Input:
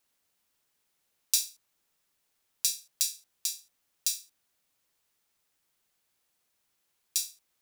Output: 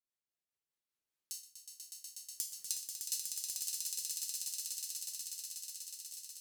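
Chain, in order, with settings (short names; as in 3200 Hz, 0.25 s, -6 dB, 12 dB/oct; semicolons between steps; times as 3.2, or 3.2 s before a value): speed glide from 81% -> 157%; Doppler pass-by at 2.58, 41 m/s, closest 2.9 m; compressor, threshold -42 dBFS, peak gain reduction 12.5 dB; rotary speaker horn 5 Hz, later 0.65 Hz, at 1.03; swelling echo 0.122 s, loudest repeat 8, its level -5 dB; gain +12 dB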